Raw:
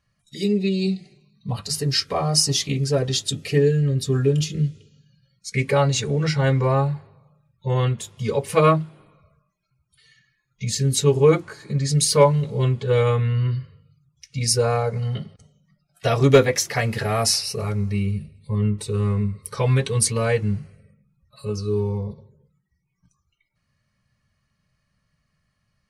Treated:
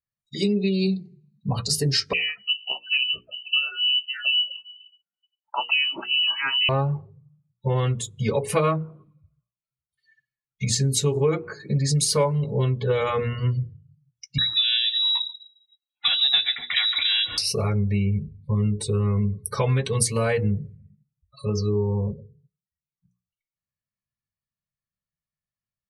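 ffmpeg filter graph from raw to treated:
-filter_complex "[0:a]asettb=1/sr,asplit=3[s0][s1][s2];[s0]atrim=end=2.134[s3];[s1]atrim=start=2.13:end=6.69,asetpts=PTS-STARTPTS,afade=t=in:d=0.004:c=qsin,afade=t=out:st=4.556:d=0.004:c=qsin,acrossover=split=780[s4][s5];[s4]aeval=exprs='val(0)*(1-1/2+1/2*cos(2*PI*2.2*n/s))':c=same[s6];[s5]aeval=exprs='val(0)*(1-1/2-1/2*cos(2*PI*2.2*n/s))':c=same[s7];[s6][s7]amix=inputs=2:normalize=0,lowpass=f=2600:t=q:w=0.5098,lowpass=f=2600:t=q:w=0.6013,lowpass=f=2600:t=q:w=0.9,lowpass=f=2600:t=q:w=2.563,afreqshift=-3100[s8];[s2]atrim=start=6.686[s9];[s3][s8]acrossfade=d=0.004:c1=hsin:c2=qsin[s10];[s10][s9]acrossfade=d=0.004:c1=qsin:c2=hsin,asettb=1/sr,asplit=3[s11][s12][s13];[s11]atrim=end=14.384[s14];[s12]atrim=start=14.38:end=17.38,asetpts=PTS-STARTPTS,afade=t=in:d=0.004:c=qsin,afade=t=out:st=2.996:d=0.004:c=qsin,aecho=1:1:140:0.133,atrim=end_sample=132300,lowpass=f=3400:t=q:w=0.5098,lowpass=f=3400:t=q:w=0.6013,lowpass=f=3400:t=q:w=0.9,lowpass=f=3400:t=q:w=2.563,afreqshift=-4000[s15];[s13]atrim=start=17.376[s16];[s14][s15]acrossfade=d=0.004:c1=hsin:c2=qsin[s17];[s17][s16]acrossfade=d=0.004:c1=qsin:c2=hsin,afftdn=nr=30:nf=-42,bandreject=f=60:t=h:w=6,bandreject=f=120:t=h:w=6,bandreject=f=180:t=h:w=6,bandreject=f=240:t=h:w=6,bandreject=f=300:t=h:w=6,bandreject=f=360:t=h:w=6,bandreject=f=420:t=h:w=6,bandreject=f=480:t=h:w=6,acompressor=threshold=0.0631:ratio=4,volume=1.68"

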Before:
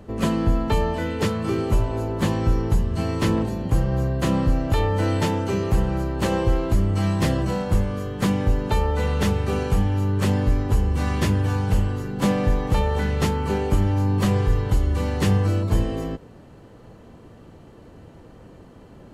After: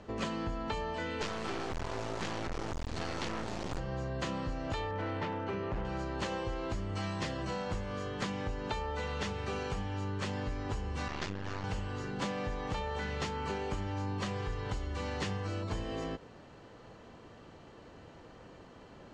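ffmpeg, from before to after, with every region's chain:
-filter_complex "[0:a]asettb=1/sr,asplit=3[s0][s1][s2];[s0]atrim=end=1.214[s3];[s1]atrim=start=1.21:end=3.79,asetpts=PTS-STARTPTS,afade=t=in:d=0.004:c=qsin,afade=t=out:st=2.576:d=0.004:c=qsin,acontrast=65,volume=4.73,asoftclip=hard,volume=0.211,acrusher=bits=3:dc=4:mix=0:aa=0.000001[s4];[s2]atrim=start=3.786[s5];[s3][s4]acrossfade=d=0.004:c1=hsin:c2=qsin[s6];[s6][s5]acrossfade=d=0.004:c1=qsin:c2=hsin,asettb=1/sr,asplit=3[s7][s8][s9];[s7]atrim=end=4.914[s10];[s8]atrim=start=4.91:end=5.85,asetpts=PTS-STARTPTS,afade=t=in:d=0.004:c=qsin,afade=t=out:st=0.936:d=0.004:c=qsin,lowpass=2300,asoftclip=type=hard:threshold=0.158[s11];[s9]atrim=start=5.846[s12];[s10][s11]acrossfade=d=0.004:c1=hsin:c2=qsin[s13];[s13][s12]acrossfade=d=0.004:c1=qsin:c2=hsin,asettb=1/sr,asplit=3[s14][s15][s16];[s14]atrim=end=11.084[s17];[s15]atrim=start=11.08:end=11.64,asetpts=PTS-STARTPTS,afade=t=in:d=0.004:c=qsin,afade=t=out:st=0.556:d=0.004:c=qsin,lowpass=f=7200:w=0.5412,lowpass=f=7200:w=1.3066,aeval=exprs='max(val(0),0)':c=same[s18];[s16]atrim=start=11.636[s19];[s17][s18]acrossfade=d=0.004:c1=hsin:c2=qsin[s20];[s20][s19]acrossfade=d=0.004:c1=qsin:c2=hsin,lowpass=f=6800:w=0.5412,lowpass=f=6800:w=1.3066,lowshelf=f=480:g=-11,acompressor=threshold=0.0224:ratio=6"

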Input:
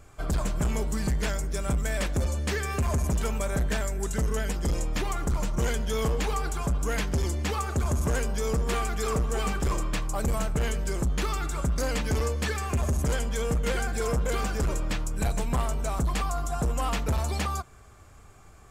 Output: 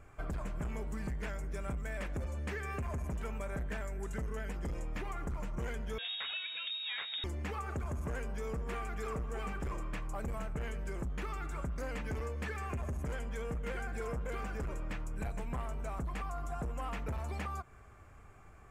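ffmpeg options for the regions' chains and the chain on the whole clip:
-filter_complex "[0:a]asettb=1/sr,asplit=3[s0][s1][s2];[s0]atrim=end=5.984[s3];[s1]atrim=start=5.98:end=7.24,asetpts=PTS-STARTPTS,afade=t=in:d=0.004:c=qsin,afade=t=out:st=1.256:d=0.004:c=qsin,aemphasis=mode=reproduction:type=50fm,lowpass=f=3200:t=q:w=0.5098,lowpass=f=3200:t=q:w=0.6013,lowpass=f=3200:t=q:w=0.9,lowpass=f=3200:t=q:w=2.563,afreqshift=-3800[s4];[s2]atrim=start=7.236[s5];[s3][s4]acrossfade=d=0.004:c1=hsin:c2=qsin[s6];[s6][s5]acrossfade=d=0.004:c1=qsin:c2=hsin,highshelf=f=3000:t=q:w=1.5:g=-8,acompressor=threshold=0.0282:ratio=6,volume=0.596"

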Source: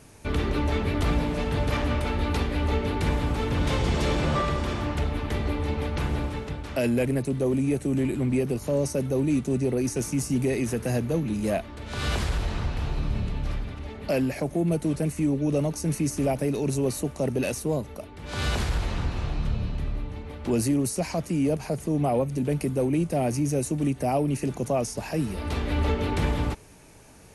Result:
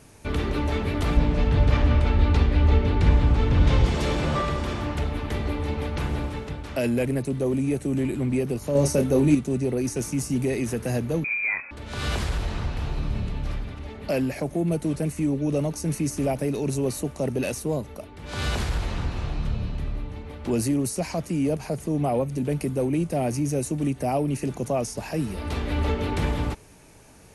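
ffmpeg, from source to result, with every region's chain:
-filter_complex "[0:a]asettb=1/sr,asplit=3[s0][s1][s2];[s0]atrim=end=1.174[s3];[s1]atrim=start=1.17:end=3.86,asetpts=PTS-STARTPTS,afade=t=in:d=0.004:c=qsin,afade=t=out:st=2.686:d=0.004:c=qsin,lowpass=5800,lowshelf=f=120:g=11.5[s4];[s2]atrim=start=3.856[s5];[s3][s4]acrossfade=d=0.004:c1=hsin:c2=qsin[s6];[s6][s5]acrossfade=d=0.004:c1=qsin:c2=hsin,asettb=1/sr,asplit=3[s7][s8][s9];[s7]atrim=end=8.754[s10];[s8]atrim=start=8.75:end=9.35,asetpts=PTS-STARTPTS,afade=t=in:d=0.004:c=qsin,afade=t=out:st=0.596:d=0.004:c=qsin,asplit=2[s11][s12];[s12]adelay=27,volume=0.447[s13];[s11][s13]amix=inputs=2:normalize=0,atrim=end_sample=26460,acontrast=23[s14];[s9]atrim=start=9.346[s15];[s10][s14]acrossfade=d=0.004:c1=hsin:c2=qsin[s16];[s16][s15]acrossfade=d=0.004:c1=qsin:c2=hsin,asettb=1/sr,asplit=3[s17][s18][s19];[s17]atrim=end=11.244[s20];[s18]atrim=start=11.24:end=11.71,asetpts=PTS-STARTPTS,afade=t=in:d=0.004:c=qsin,afade=t=out:st=0.466:d=0.004:c=qsin,bandreject=f=670:w=7.5,asplit=2[s21][s22];[s22]adelay=33,volume=0.211[s23];[s21][s23]amix=inputs=2:normalize=0,atrim=end_sample=20727,lowpass=f=2200:t=q:w=0.5098,lowpass=f=2200:t=q:w=0.6013,lowpass=f=2200:t=q:w=0.9,lowpass=f=2200:t=q:w=2.563,afreqshift=-2600[s24];[s19]atrim=start=11.706[s25];[s20][s24]acrossfade=d=0.004:c1=hsin:c2=qsin[s26];[s26][s25]acrossfade=d=0.004:c1=qsin:c2=hsin"

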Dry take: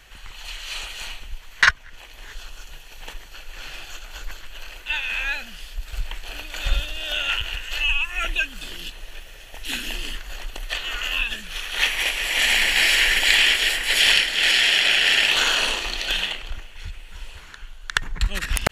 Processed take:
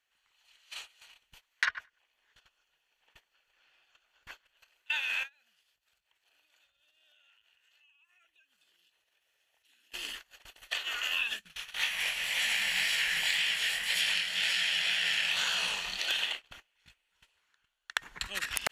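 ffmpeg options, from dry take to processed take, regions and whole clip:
-filter_complex "[0:a]asettb=1/sr,asplit=3[s0][s1][s2];[s0]atrim=end=1.654[s3];[s1]atrim=start=1.65:end=4.57,asetpts=PTS-STARTPTS,afade=t=in:d=0.004:c=qsin,afade=t=out:st=2.916:d=0.004:c=qsin,acrossover=split=4300[s4][s5];[s5]acompressor=threshold=0.00158:ratio=4:attack=1:release=60[s6];[s4][s6]amix=inputs=2:normalize=0,bandreject=f=4000:w=27,asplit=2[s7][s8];[s8]adelay=98,lowpass=f=4000:p=1,volume=0.2,asplit=2[s9][s10];[s10]adelay=98,lowpass=f=4000:p=1,volume=0.36,asplit=2[s11][s12];[s12]adelay=98,lowpass=f=4000:p=1,volume=0.36[s13];[s7][s9][s11][s13]amix=inputs=4:normalize=0,atrim=end_sample=128772[s14];[s2]atrim=start=4.566[s15];[s3][s14]acrossfade=d=0.004:c1=hsin:c2=qsin[s16];[s16][s15]acrossfade=d=0.004:c1=qsin:c2=hsin,asettb=1/sr,asplit=3[s17][s18][s19];[s17]atrim=end=5.234[s20];[s18]atrim=start=5.23:end=9.92,asetpts=PTS-STARTPTS,afade=t=in:d=0.004:c=qsin,afade=t=out:st=4.686:d=0.004:c=qsin,equalizer=f=260:t=o:w=0.39:g=-3.5,acompressor=threshold=0.02:ratio=6:attack=3.2:release=140:knee=1:detection=peak,highpass=51[s21];[s19]atrim=start=9.916[s22];[s20][s21]acrossfade=d=0.004:c1=hsin:c2=qsin[s23];[s23][s22]acrossfade=d=0.004:c1=qsin:c2=hsin,asettb=1/sr,asplit=3[s24][s25][s26];[s24]atrim=end=11.394[s27];[s25]atrim=start=11.39:end=15.99,asetpts=PTS-STARTPTS,afade=t=in:d=0.004:c=qsin,afade=t=out:st=4.596:d=0.004:c=qsin,lowshelf=f=230:t=q:w=3:g=9.5,flanger=delay=16.5:depth=7.6:speed=1.9[s28];[s26]atrim=start=15.986[s29];[s27][s28]acrossfade=d=0.004:c1=hsin:c2=qsin[s30];[s30][s29]acrossfade=d=0.004:c1=qsin:c2=hsin,agate=range=0.0631:threshold=0.0355:ratio=16:detection=peak,highpass=f=700:p=1,acompressor=threshold=0.0891:ratio=6,volume=0.562"

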